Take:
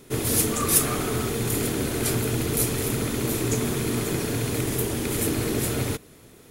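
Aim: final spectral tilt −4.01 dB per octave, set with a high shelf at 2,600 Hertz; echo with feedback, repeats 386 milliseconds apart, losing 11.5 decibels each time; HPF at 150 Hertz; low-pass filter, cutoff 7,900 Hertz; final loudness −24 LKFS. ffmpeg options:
ffmpeg -i in.wav -af "highpass=150,lowpass=7900,highshelf=frequency=2600:gain=3.5,aecho=1:1:386|772|1158:0.266|0.0718|0.0194,volume=1.5dB" out.wav

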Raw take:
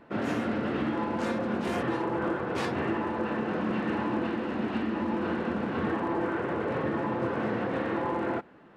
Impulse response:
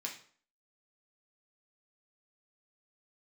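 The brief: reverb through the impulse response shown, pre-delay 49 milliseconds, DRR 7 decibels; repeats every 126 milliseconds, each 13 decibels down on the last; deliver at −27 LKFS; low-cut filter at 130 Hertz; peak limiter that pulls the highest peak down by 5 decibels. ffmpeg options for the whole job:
-filter_complex "[0:a]highpass=130,alimiter=limit=-22.5dB:level=0:latency=1,aecho=1:1:126|252|378:0.224|0.0493|0.0108,asplit=2[link_01][link_02];[1:a]atrim=start_sample=2205,adelay=49[link_03];[link_02][link_03]afir=irnorm=-1:irlink=0,volume=-7dB[link_04];[link_01][link_04]amix=inputs=2:normalize=0,volume=4dB"

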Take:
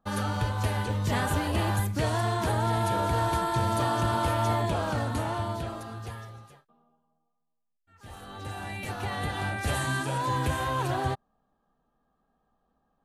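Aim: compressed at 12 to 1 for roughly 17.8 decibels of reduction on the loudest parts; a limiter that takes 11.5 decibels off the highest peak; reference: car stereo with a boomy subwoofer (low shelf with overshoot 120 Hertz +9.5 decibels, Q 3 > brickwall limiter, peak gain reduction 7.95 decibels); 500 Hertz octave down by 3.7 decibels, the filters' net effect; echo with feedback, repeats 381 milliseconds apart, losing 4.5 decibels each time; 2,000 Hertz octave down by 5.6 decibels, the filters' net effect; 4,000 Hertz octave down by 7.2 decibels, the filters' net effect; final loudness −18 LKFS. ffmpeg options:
ffmpeg -i in.wav -af "equalizer=frequency=500:width_type=o:gain=-4,equalizer=frequency=2000:width_type=o:gain=-6,equalizer=frequency=4000:width_type=o:gain=-7,acompressor=threshold=-42dB:ratio=12,alimiter=level_in=19dB:limit=-24dB:level=0:latency=1,volume=-19dB,lowshelf=frequency=120:width_type=q:width=3:gain=9.5,aecho=1:1:381|762|1143|1524|1905|2286|2667|3048|3429:0.596|0.357|0.214|0.129|0.0772|0.0463|0.0278|0.0167|0.01,volume=26.5dB,alimiter=limit=-8.5dB:level=0:latency=1" out.wav

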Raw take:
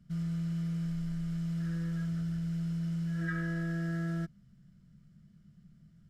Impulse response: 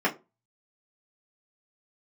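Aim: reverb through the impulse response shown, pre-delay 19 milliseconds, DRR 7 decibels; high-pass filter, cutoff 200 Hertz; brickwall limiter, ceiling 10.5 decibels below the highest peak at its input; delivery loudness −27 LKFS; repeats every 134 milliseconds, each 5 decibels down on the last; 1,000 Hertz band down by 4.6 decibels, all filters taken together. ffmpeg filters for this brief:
-filter_complex "[0:a]highpass=200,equalizer=frequency=1000:width_type=o:gain=-7.5,alimiter=level_in=14dB:limit=-24dB:level=0:latency=1,volume=-14dB,aecho=1:1:134|268|402|536|670|804|938:0.562|0.315|0.176|0.0988|0.0553|0.031|0.0173,asplit=2[link_01][link_02];[1:a]atrim=start_sample=2205,adelay=19[link_03];[link_02][link_03]afir=irnorm=-1:irlink=0,volume=-20.5dB[link_04];[link_01][link_04]amix=inputs=2:normalize=0,volume=15dB"

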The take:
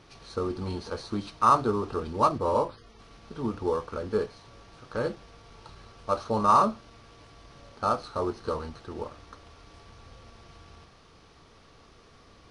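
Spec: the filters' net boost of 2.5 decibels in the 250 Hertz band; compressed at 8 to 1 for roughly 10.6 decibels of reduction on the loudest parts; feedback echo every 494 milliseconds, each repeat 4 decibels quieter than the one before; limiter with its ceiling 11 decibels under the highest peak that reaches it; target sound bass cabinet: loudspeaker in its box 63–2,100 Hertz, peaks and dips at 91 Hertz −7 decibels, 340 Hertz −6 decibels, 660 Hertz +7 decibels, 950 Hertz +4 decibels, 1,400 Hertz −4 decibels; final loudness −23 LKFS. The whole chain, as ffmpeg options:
ffmpeg -i in.wav -af "equalizer=frequency=250:width_type=o:gain=5,acompressor=threshold=-26dB:ratio=8,alimiter=level_in=2.5dB:limit=-24dB:level=0:latency=1,volume=-2.5dB,highpass=frequency=63:width=0.5412,highpass=frequency=63:width=1.3066,equalizer=frequency=91:width_type=q:width=4:gain=-7,equalizer=frequency=340:width_type=q:width=4:gain=-6,equalizer=frequency=660:width_type=q:width=4:gain=7,equalizer=frequency=950:width_type=q:width=4:gain=4,equalizer=frequency=1400:width_type=q:width=4:gain=-4,lowpass=frequency=2100:width=0.5412,lowpass=frequency=2100:width=1.3066,aecho=1:1:494|988|1482|1976|2470|2964|3458|3952|4446:0.631|0.398|0.25|0.158|0.0994|0.0626|0.0394|0.0249|0.0157,volume=14dB" out.wav

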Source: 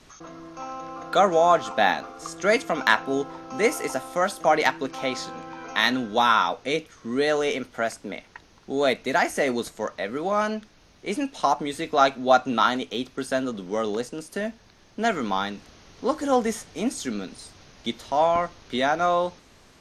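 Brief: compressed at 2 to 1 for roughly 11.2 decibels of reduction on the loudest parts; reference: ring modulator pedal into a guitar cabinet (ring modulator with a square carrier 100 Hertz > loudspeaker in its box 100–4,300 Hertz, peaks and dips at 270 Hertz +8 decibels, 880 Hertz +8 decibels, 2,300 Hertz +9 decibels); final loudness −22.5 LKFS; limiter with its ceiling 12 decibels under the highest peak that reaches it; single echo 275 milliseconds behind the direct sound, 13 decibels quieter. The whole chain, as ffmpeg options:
ffmpeg -i in.wav -af "acompressor=threshold=-33dB:ratio=2,alimiter=limit=-22dB:level=0:latency=1,aecho=1:1:275:0.224,aeval=exprs='val(0)*sgn(sin(2*PI*100*n/s))':channel_layout=same,highpass=100,equalizer=frequency=270:width_type=q:width=4:gain=8,equalizer=frequency=880:width_type=q:width=4:gain=8,equalizer=frequency=2300:width_type=q:width=4:gain=9,lowpass=frequency=4300:width=0.5412,lowpass=frequency=4300:width=1.3066,volume=9.5dB" out.wav

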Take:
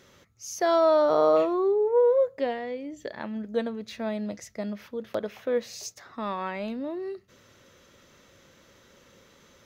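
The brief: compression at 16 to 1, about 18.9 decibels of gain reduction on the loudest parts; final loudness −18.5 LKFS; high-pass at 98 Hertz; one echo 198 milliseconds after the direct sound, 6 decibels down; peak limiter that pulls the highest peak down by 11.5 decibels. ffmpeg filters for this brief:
ffmpeg -i in.wav -af "highpass=98,acompressor=threshold=-36dB:ratio=16,alimiter=level_in=9dB:limit=-24dB:level=0:latency=1,volume=-9dB,aecho=1:1:198:0.501,volume=22.5dB" out.wav

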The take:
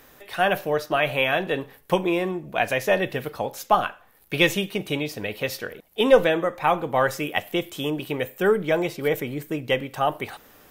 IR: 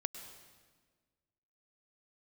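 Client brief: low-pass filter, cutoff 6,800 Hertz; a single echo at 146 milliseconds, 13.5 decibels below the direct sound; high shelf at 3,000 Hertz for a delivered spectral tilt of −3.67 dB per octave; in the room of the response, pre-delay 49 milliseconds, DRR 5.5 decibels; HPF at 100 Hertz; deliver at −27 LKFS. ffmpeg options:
-filter_complex "[0:a]highpass=100,lowpass=6800,highshelf=frequency=3000:gain=-7,aecho=1:1:146:0.211,asplit=2[link_01][link_02];[1:a]atrim=start_sample=2205,adelay=49[link_03];[link_02][link_03]afir=irnorm=-1:irlink=0,volume=-5dB[link_04];[link_01][link_04]amix=inputs=2:normalize=0,volume=-3.5dB"

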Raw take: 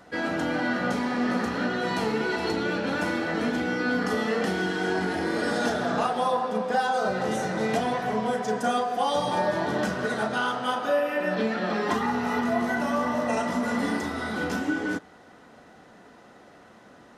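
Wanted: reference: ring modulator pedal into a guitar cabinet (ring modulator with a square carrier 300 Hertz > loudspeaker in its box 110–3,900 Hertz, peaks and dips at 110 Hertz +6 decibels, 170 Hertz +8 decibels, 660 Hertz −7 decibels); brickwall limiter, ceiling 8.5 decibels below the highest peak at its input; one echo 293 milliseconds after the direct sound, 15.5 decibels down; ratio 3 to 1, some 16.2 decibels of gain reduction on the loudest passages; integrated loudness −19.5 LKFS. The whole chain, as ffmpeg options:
ffmpeg -i in.wav -af "acompressor=threshold=-44dB:ratio=3,alimiter=level_in=11.5dB:limit=-24dB:level=0:latency=1,volume=-11.5dB,aecho=1:1:293:0.168,aeval=exprs='val(0)*sgn(sin(2*PI*300*n/s))':channel_layout=same,highpass=110,equalizer=frequency=110:width_type=q:width=4:gain=6,equalizer=frequency=170:width_type=q:width=4:gain=8,equalizer=frequency=660:width_type=q:width=4:gain=-7,lowpass=frequency=3900:width=0.5412,lowpass=frequency=3900:width=1.3066,volume=25.5dB" out.wav

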